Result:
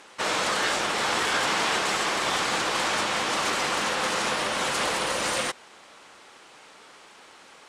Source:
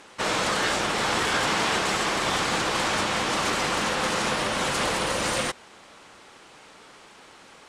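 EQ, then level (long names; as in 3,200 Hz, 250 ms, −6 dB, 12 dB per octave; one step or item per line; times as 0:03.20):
low-shelf EQ 220 Hz −10 dB
0.0 dB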